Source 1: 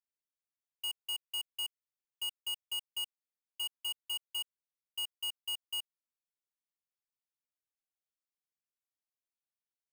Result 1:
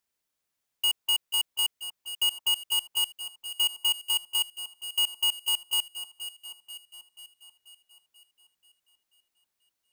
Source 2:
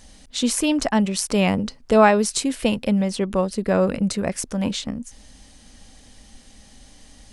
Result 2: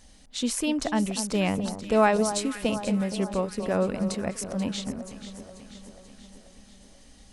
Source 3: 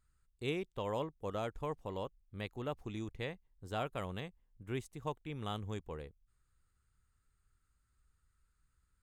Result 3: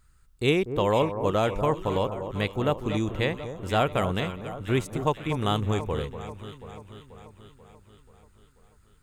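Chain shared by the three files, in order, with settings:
echo whose repeats swap between lows and highs 243 ms, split 1.3 kHz, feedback 75%, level -9.5 dB; normalise loudness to -27 LUFS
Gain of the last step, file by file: +12.0 dB, -6.5 dB, +14.5 dB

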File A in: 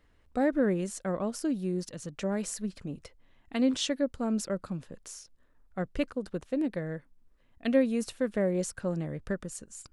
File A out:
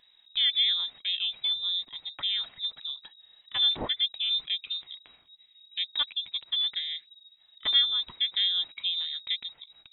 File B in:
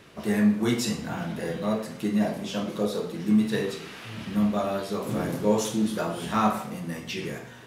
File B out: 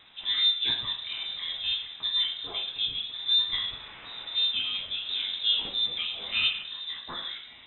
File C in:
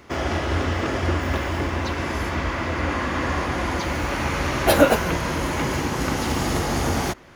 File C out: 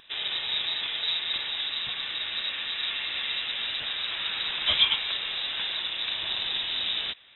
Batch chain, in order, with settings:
frequency inversion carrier 3.8 kHz; vibrato 3 Hz 13 cents; normalise loudness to -27 LUFS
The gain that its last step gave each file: +1.0 dB, -3.5 dB, -7.5 dB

